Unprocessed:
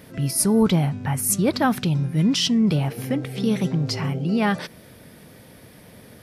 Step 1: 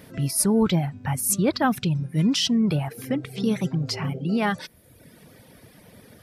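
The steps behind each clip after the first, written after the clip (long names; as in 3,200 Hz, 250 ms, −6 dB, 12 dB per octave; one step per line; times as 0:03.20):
reverb reduction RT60 0.91 s
level −1 dB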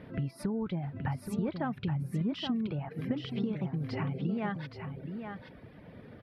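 high-frequency loss of the air 430 metres
downward compressor 10 to 1, threshold −30 dBFS, peak gain reduction 14 dB
on a send: single-tap delay 824 ms −7 dB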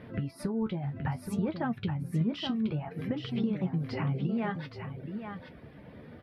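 flanger 0.6 Hz, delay 8.2 ms, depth 6.7 ms, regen +48%
level +5.5 dB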